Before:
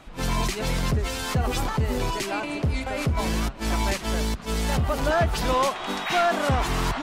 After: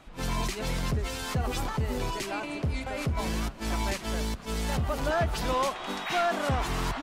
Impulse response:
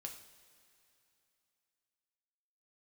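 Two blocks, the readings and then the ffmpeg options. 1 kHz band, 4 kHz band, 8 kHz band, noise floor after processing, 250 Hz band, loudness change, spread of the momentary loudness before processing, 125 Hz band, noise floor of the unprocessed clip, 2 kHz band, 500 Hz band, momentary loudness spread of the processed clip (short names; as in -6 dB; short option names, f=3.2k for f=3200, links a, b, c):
-5.0 dB, -5.0 dB, -5.0 dB, -43 dBFS, -5.0 dB, -5.0 dB, 5 LU, -5.0 dB, -38 dBFS, -5.0 dB, -5.0 dB, 5 LU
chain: -af "aecho=1:1:210:0.0708,volume=-5dB"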